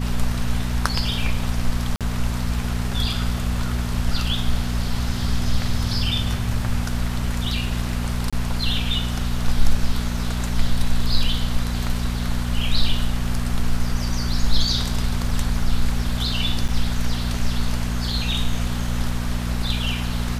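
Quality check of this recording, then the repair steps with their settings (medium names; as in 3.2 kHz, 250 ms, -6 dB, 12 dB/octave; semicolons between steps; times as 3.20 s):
hum 60 Hz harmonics 4 -25 dBFS
1.96–2.01 s: dropout 47 ms
8.30–8.33 s: dropout 26 ms
16.68–16.69 s: dropout 6.1 ms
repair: de-hum 60 Hz, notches 4; interpolate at 1.96 s, 47 ms; interpolate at 8.30 s, 26 ms; interpolate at 16.68 s, 6.1 ms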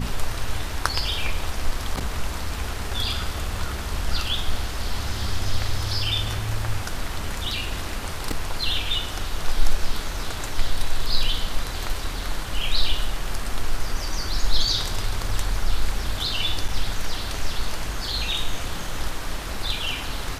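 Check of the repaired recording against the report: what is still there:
nothing left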